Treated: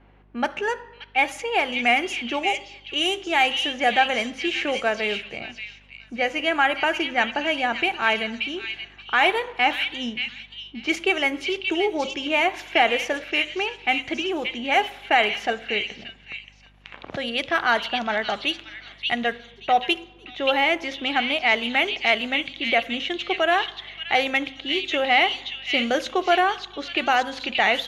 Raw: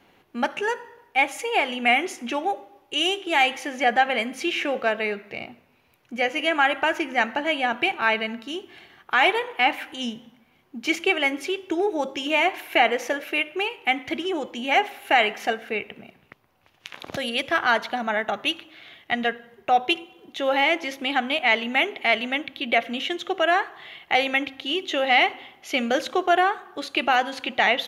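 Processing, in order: hum 50 Hz, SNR 31 dB; delay with a stepping band-pass 0.578 s, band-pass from 3500 Hz, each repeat 0.7 oct, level -1 dB; low-pass opened by the level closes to 2200 Hz, open at -17.5 dBFS

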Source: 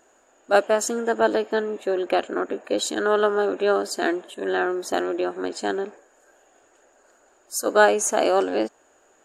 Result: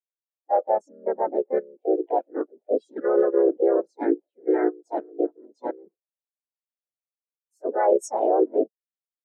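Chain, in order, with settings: level quantiser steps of 12 dB; harmoniser -3 st -2 dB, +3 st -2 dB, +5 st -4 dB; spectral expander 2.5:1

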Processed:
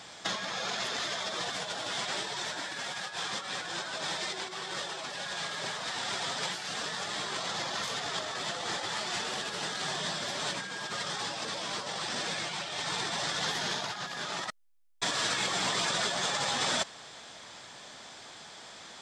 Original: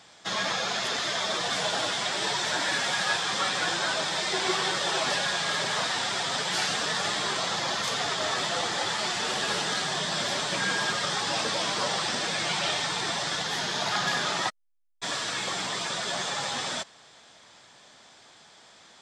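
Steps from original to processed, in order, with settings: negative-ratio compressor -33 dBFS, ratio -0.5

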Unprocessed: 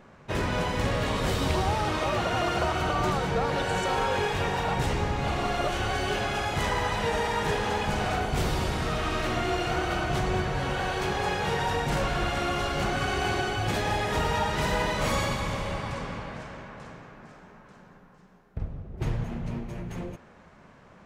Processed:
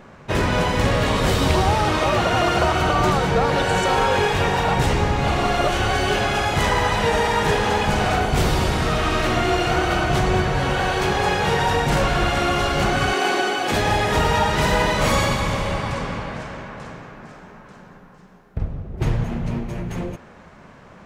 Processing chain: 13.13–13.72 HPF 230 Hz 24 dB/oct; gain +8 dB

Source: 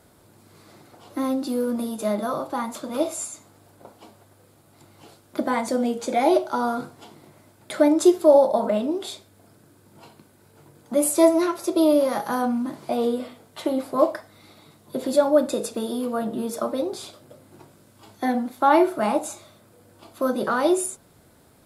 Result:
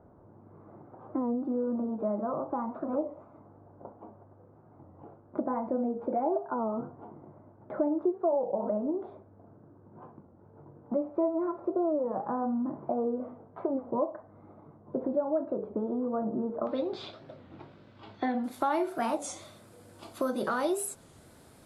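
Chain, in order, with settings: compressor 3:1, threshold -29 dBFS, peak gain reduction 14 dB; LPF 1100 Hz 24 dB/oct, from 16.67 s 3800 Hz, from 18.44 s 12000 Hz; record warp 33 1/3 rpm, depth 160 cents

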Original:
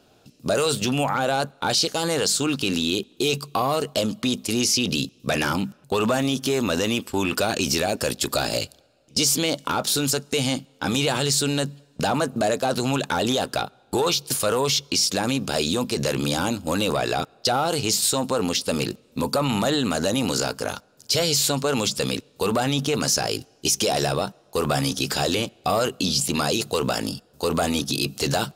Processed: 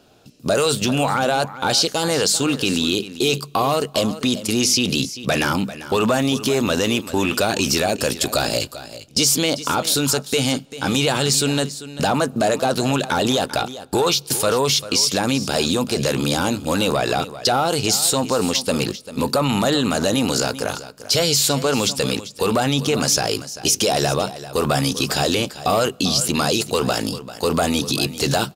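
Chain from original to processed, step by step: echo 0.393 s -14.5 dB; gain +3.5 dB

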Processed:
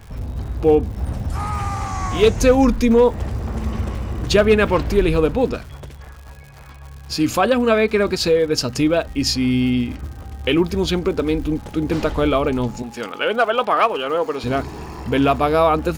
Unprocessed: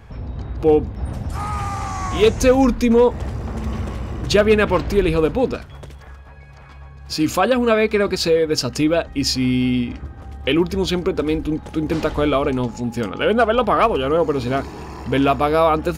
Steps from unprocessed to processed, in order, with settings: 12.82–14.44 weighting filter A; crackle 170/s -34 dBFS; low shelf 70 Hz +5.5 dB; de-hum 65.3 Hz, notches 2

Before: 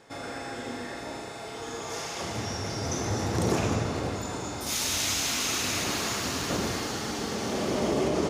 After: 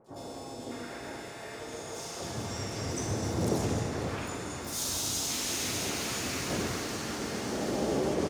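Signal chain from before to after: three bands offset in time lows, highs, mids 60/600 ms, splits 970/3000 Hz; harmoniser +5 st -7 dB; gain -3.5 dB

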